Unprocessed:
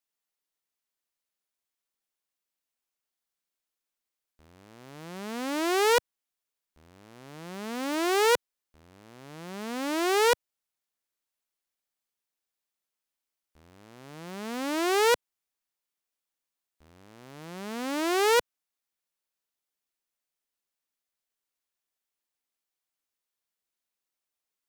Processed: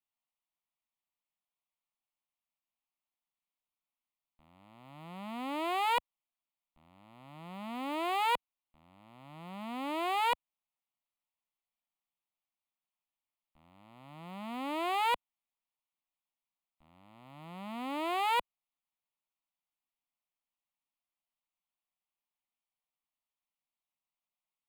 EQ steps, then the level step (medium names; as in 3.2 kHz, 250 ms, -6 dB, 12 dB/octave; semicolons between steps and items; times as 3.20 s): peaking EQ 71 Hz -14.5 dB 0.97 oct; treble shelf 3.7 kHz -11.5 dB; static phaser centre 1.6 kHz, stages 6; 0.0 dB